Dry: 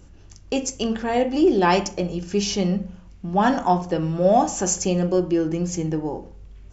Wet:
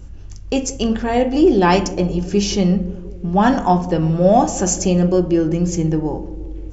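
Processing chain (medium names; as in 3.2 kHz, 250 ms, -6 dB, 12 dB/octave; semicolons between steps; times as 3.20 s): bass shelf 130 Hz +11.5 dB; on a send: band-passed feedback delay 175 ms, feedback 75%, band-pass 360 Hz, level -15.5 dB; on the sum: trim +3 dB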